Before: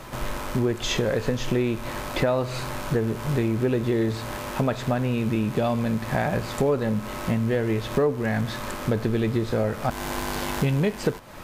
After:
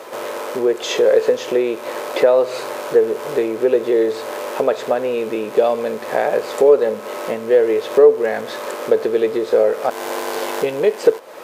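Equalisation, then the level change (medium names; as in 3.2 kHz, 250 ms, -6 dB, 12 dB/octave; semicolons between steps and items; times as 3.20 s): resonant high-pass 460 Hz, resonance Q 3.8; +3.0 dB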